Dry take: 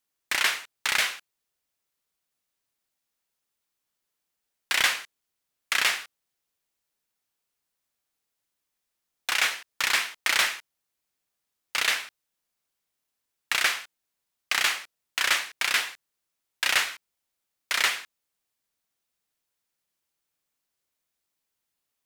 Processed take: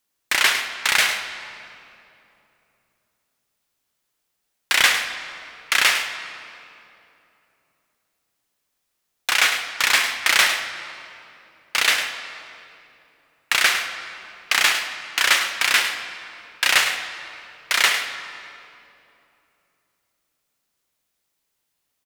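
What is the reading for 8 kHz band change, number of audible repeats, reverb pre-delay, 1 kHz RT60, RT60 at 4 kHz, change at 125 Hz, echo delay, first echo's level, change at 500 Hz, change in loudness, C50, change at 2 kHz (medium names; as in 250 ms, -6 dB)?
+6.5 dB, 1, 35 ms, 2.7 s, 1.9 s, no reading, 104 ms, -10.5 dB, +7.5 dB, +6.5 dB, 6.5 dB, +7.0 dB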